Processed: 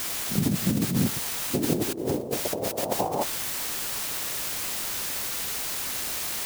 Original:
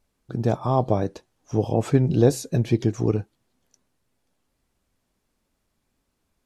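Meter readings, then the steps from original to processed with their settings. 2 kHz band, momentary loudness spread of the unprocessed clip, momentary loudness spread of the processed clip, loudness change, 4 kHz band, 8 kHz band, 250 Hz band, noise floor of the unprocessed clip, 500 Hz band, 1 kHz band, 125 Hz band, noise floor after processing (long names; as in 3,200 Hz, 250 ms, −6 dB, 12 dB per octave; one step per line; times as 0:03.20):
+9.0 dB, 9 LU, 3 LU, −4.0 dB, +13.0 dB, +13.5 dB, −3.0 dB, −75 dBFS, −6.0 dB, −2.0 dB, −8.5 dB, −32 dBFS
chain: cochlear-implant simulation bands 2
low-pass filter sweep 200 Hz → 2,800 Hz, 0:01.04–0:05.04
bit-depth reduction 6 bits, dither triangular
compressor whose output falls as the input rises −26 dBFS, ratio −1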